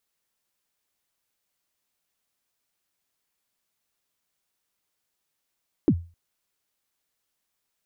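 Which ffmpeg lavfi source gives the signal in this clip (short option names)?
-f lavfi -i "aevalsrc='0.266*pow(10,-3*t/0.33)*sin(2*PI*(370*0.063/log(85/370)*(exp(log(85/370)*min(t,0.063)/0.063)-1)+85*max(t-0.063,0)))':d=0.26:s=44100"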